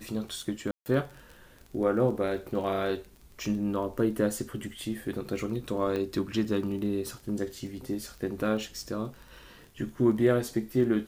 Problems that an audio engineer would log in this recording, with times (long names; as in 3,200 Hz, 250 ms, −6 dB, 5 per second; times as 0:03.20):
surface crackle 18 per second −38 dBFS
0:00.71–0:00.86: drop-out 149 ms
0:05.96: click −20 dBFS